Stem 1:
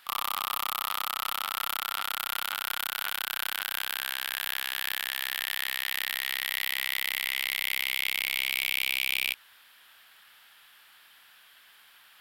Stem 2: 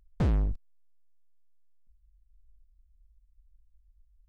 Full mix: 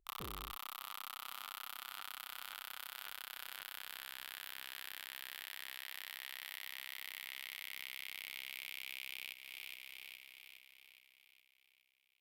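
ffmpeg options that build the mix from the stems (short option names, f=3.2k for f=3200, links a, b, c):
-filter_complex "[0:a]aeval=exprs='sgn(val(0))*max(abs(val(0))-0.0106,0)':c=same,volume=-5dB,asplit=2[a][b];[b]volume=-13.5dB[c];[1:a]equalizer=f=390:w=1.5:g=13,volume=-17dB[d];[c]aecho=0:1:415|830|1245|1660|2075|2490|2905|3320:1|0.54|0.292|0.157|0.085|0.0459|0.0248|0.0134[e];[a][d][e]amix=inputs=3:normalize=0,acompressor=threshold=-42dB:ratio=5"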